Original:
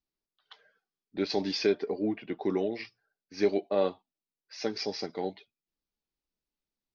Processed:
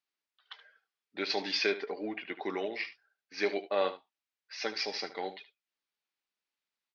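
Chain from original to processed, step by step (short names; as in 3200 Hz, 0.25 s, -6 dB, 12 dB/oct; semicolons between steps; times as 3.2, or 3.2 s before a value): band-pass 2100 Hz, Q 0.8; on a send: echo 74 ms -14 dB; on the sum: gain +6.5 dB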